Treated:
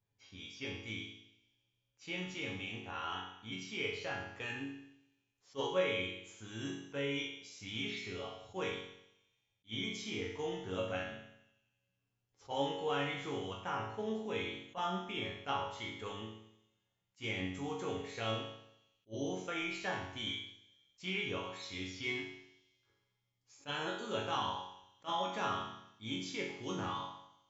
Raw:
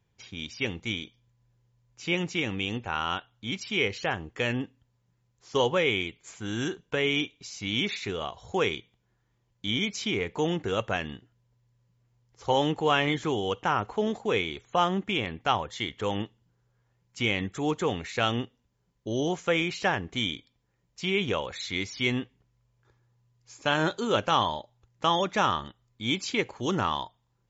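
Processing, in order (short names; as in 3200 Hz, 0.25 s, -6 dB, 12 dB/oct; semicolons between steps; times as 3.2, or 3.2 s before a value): resonator bank F#2 minor, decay 0.77 s; 20.26–21.31 dynamic EQ 1700 Hz, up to +5 dB, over -59 dBFS, Q 1.1; on a send: thin delay 89 ms, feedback 75%, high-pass 3900 Hz, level -18.5 dB; on the sum: attack slew limiter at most 420 dB/s; gain +6.5 dB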